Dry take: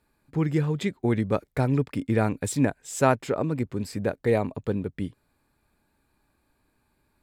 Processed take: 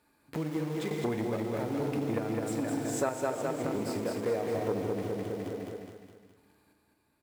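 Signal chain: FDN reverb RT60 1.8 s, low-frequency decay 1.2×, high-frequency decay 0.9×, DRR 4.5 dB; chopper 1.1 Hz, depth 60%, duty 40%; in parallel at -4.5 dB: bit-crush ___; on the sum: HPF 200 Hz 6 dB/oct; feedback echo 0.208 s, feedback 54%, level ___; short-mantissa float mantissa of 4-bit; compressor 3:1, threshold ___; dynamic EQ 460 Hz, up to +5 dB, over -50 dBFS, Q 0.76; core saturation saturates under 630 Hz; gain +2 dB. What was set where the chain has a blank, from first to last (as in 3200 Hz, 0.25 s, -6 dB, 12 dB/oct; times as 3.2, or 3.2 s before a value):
6-bit, -4.5 dB, -37 dBFS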